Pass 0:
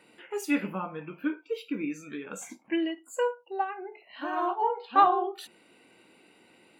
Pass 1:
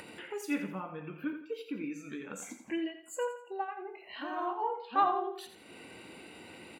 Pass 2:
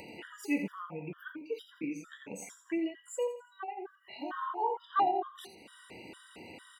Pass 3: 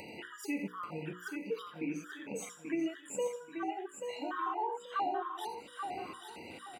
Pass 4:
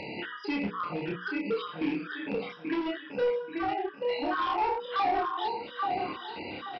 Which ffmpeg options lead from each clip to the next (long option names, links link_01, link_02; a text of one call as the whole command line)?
ffmpeg -i in.wav -filter_complex "[0:a]equalizer=frequency=64:width_type=o:width=1.2:gain=13.5,acompressor=mode=upward:threshold=-29dB:ratio=2.5,asplit=2[link_01][link_02];[link_02]aecho=0:1:85|170|255|340:0.316|0.12|0.0457|0.0174[link_03];[link_01][link_03]amix=inputs=2:normalize=0,volume=-7dB" out.wav
ffmpeg -i in.wav -filter_complex "[0:a]acrossover=split=2000[link_01][link_02];[link_02]acompressor=mode=upward:threshold=-55dB:ratio=2.5[link_03];[link_01][link_03]amix=inputs=2:normalize=0,afftfilt=real='re*gt(sin(2*PI*2.2*pts/sr)*(1-2*mod(floor(b*sr/1024/970),2)),0)':imag='im*gt(sin(2*PI*2.2*pts/sr)*(1-2*mod(floor(b*sr/1024/970),2)),0)':win_size=1024:overlap=0.75,volume=2dB" out.wav
ffmpeg -i in.wav -af "bandreject=frequency=60:width_type=h:width=6,bandreject=frequency=120:width_type=h:width=6,bandreject=frequency=180:width_type=h:width=6,bandreject=frequency=240:width_type=h:width=6,bandreject=frequency=300:width_type=h:width=6,bandreject=frequency=360:width_type=h:width=6,bandreject=frequency=420:width_type=h:width=6,bandreject=frequency=480:width_type=h:width=6,alimiter=level_in=3.5dB:limit=-24dB:level=0:latency=1:release=212,volume=-3.5dB,aecho=1:1:834|1668|2502|3336:0.473|0.142|0.0426|0.0128,volume=1dB" out.wav
ffmpeg -i in.wav -filter_complex "[0:a]aresample=11025,asoftclip=type=hard:threshold=-34dB,aresample=44100,asplit=2[link_01][link_02];[link_02]adelay=29,volume=-3dB[link_03];[link_01][link_03]amix=inputs=2:normalize=0,volume=7.5dB" out.wav